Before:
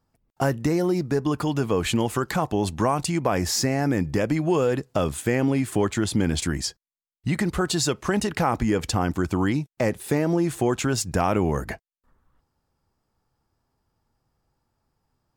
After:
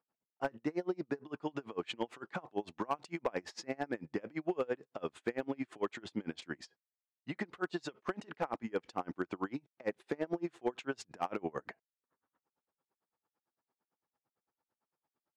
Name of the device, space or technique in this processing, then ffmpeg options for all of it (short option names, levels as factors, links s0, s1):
helicopter radio: -af "highpass=300,lowpass=3000,aeval=exprs='val(0)*pow(10,-31*(0.5-0.5*cos(2*PI*8.9*n/s))/20)':c=same,asoftclip=type=hard:threshold=0.126,volume=0.531"